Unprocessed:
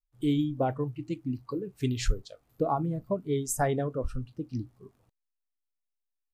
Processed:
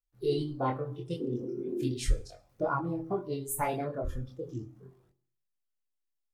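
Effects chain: reverb RT60 0.50 s, pre-delay 3 ms, DRR 10 dB; spectral repair 1.23–1.88, 210–1300 Hz after; formant shift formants +4 st; chorus voices 2, 0.38 Hz, delay 24 ms, depth 1.9 ms

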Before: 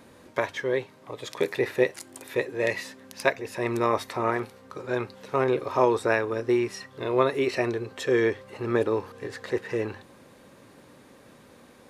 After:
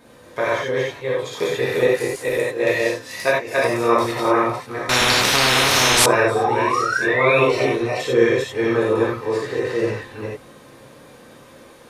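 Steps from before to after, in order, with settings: reverse delay 0.228 s, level -1 dB; 6.35–7.39 painted sound rise 720–2700 Hz -27 dBFS; 7.43–8.18 notch 1700 Hz, Q 9.3; non-linear reverb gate 0.12 s flat, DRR -5.5 dB; 4.89–6.06 spectral compressor 10:1; gain -1 dB

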